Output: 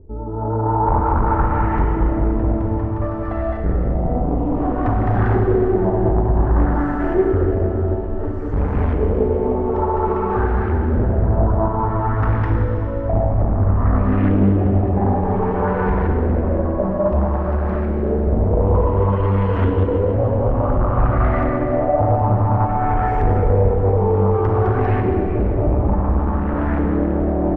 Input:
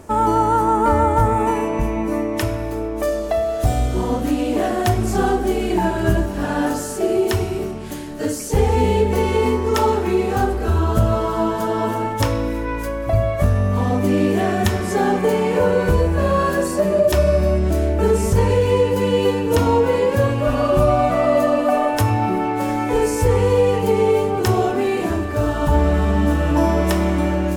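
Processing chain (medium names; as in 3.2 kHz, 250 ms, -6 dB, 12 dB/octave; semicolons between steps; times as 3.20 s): tilt EQ -4 dB/octave; flange 1.1 Hz, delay 2.1 ms, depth 2.6 ms, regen +46%; amplifier tone stack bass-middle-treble 5-5-5; bouncing-ball echo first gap 210 ms, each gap 0.9×, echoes 5; level rider gain up to 6 dB; hard clipper -20.5 dBFS, distortion -7 dB; LFO low-pass saw up 0.56 Hz 410–1800 Hz; Schroeder reverb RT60 3.3 s, combs from 31 ms, DRR 1 dB; loudspeaker Doppler distortion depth 0.36 ms; trim +4.5 dB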